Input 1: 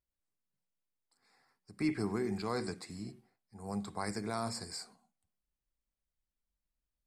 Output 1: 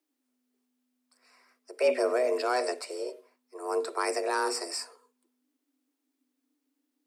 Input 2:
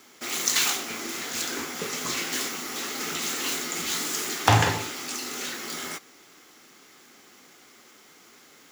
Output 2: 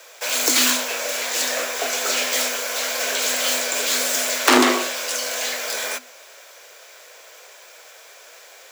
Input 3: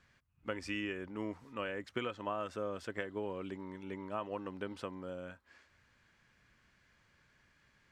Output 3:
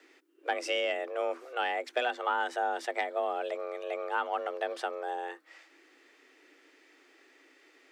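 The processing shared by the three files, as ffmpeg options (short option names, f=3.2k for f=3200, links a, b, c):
-af "aeval=exprs='0.891*(cos(1*acos(clip(val(0)/0.891,-1,1)))-cos(1*PI/2))+0.178*(cos(6*acos(clip(val(0)/0.891,-1,1)))-cos(6*PI/2))+0.316*(cos(7*acos(clip(val(0)/0.891,-1,1)))-cos(7*PI/2))':c=same,afreqshift=250,acontrast=44,volume=-1dB"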